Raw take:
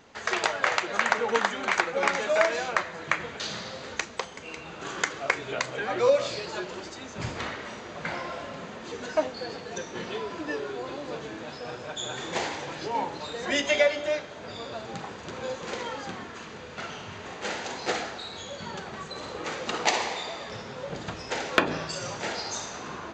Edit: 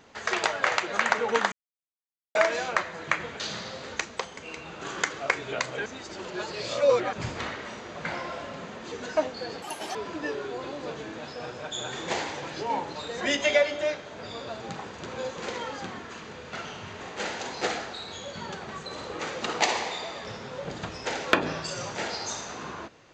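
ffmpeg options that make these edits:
-filter_complex "[0:a]asplit=7[a][b][c][d][e][f][g];[a]atrim=end=1.52,asetpts=PTS-STARTPTS,afade=t=out:st=1.516:d=0.004:c=hsin[h];[b]atrim=start=1.52:end=2.35,asetpts=PTS-STARTPTS,volume=0[i];[c]atrim=start=2.35:end=5.862,asetpts=PTS-STARTPTS,afade=t=in:d=0.004:c=hsin[j];[d]atrim=start=5.858:end=7.132,asetpts=PTS-STARTPTS,areverse[k];[e]atrim=start=7.128:end=9.624[l];[f]atrim=start=9.62:end=10.2,asetpts=PTS-STARTPTS,asetrate=77175,aresample=44100[m];[g]atrim=start=10.196[n];[h][i][j]concat=n=3:v=0:a=1[o];[o][k]acrossfade=d=0.004:c1=hsin:c2=hsin[p];[p][l]acrossfade=d=0.004:c1=hsin:c2=hsin[q];[q][m]acrossfade=d=0.004:c1=hsin:c2=hsin[r];[r][n]acrossfade=d=0.004:c1=hsin:c2=hsin"

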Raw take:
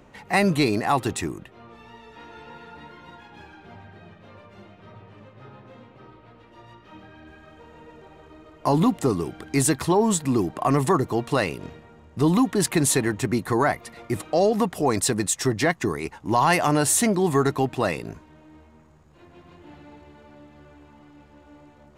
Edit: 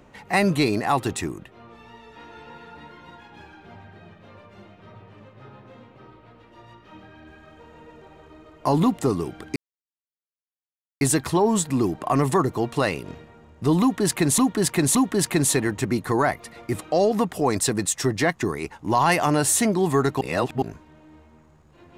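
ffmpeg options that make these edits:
-filter_complex "[0:a]asplit=6[a][b][c][d][e][f];[a]atrim=end=9.56,asetpts=PTS-STARTPTS,afade=t=out:st=9.556:d=0.004:c=hsin,apad=pad_dur=1.45[g];[b]atrim=start=9.56:end=12.932,asetpts=PTS-STARTPTS,afade=t=in:d=0.004:c=hsin[h];[c]atrim=start=12.358:end=12.932[i];[d]atrim=start=12.358:end=17.622[j];[e]atrim=start=17.618:end=18.032,asetpts=PTS-STARTPTS,areverse[k];[f]atrim=start=18.028[l];[g][h]concat=n=2:v=0:a=1[m];[m][i]acrossfade=d=0.004:c1=hsin:c2=hsin[n];[n][j]acrossfade=d=0.004:c1=hsin:c2=hsin[o];[o][k]acrossfade=d=0.004:c1=hsin:c2=hsin[p];[p][l]acrossfade=d=0.004:c1=hsin:c2=hsin"

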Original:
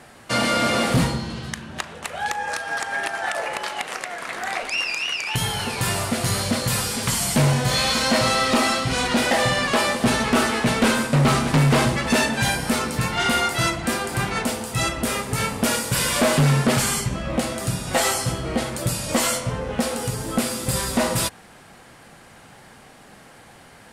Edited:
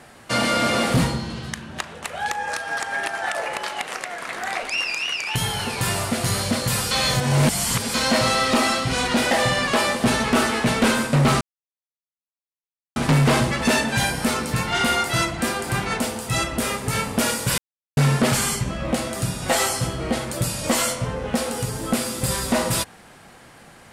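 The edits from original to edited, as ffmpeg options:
-filter_complex "[0:a]asplit=6[a][b][c][d][e][f];[a]atrim=end=6.912[g];[b]atrim=start=6.908:end=7.942,asetpts=PTS-STARTPTS,areverse[h];[c]atrim=start=7.938:end=11.41,asetpts=PTS-STARTPTS,afade=t=out:st=3.468:d=0.004:c=hsin,apad=pad_dur=1.55[i];[d]atrim=start=11.41:end=16.03,asetpts=PTS-STARTPTS,afade=t=in:d=0.004:c=hsin,afade=t=out:st=4.616:d=0.004:c=hsin[j];[e]atrim=start=16.03:end=16.42,asetpts=PTS-STARTPTS,volume=0[k];[f]atrim=start=16.42,asetpts=PTS-STARTPTS,afade=t=in:d=0.004:c=hsin[l];[g][h]acrossfade=d=0.004:c1=hsin:c2=hsin[m];[i][j][k][l]concat=n=4:v=0:a=1[n];[m][n]acrossfade=d=0.004:c1=hsin:c2=hsin"

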